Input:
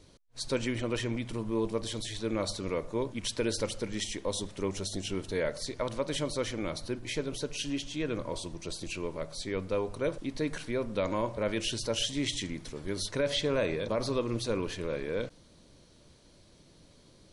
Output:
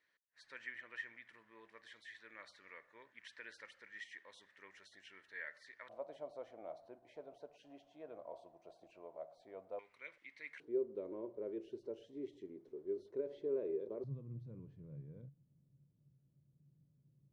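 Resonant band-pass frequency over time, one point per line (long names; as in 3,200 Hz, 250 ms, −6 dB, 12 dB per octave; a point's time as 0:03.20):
resonant band-pass, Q 9
1,800 Hz
from 0:05.89 690 Hz
from 0:09.79 2,100 Hz
from 0:10.60 390 Hz
from 0:14.04 140 Hz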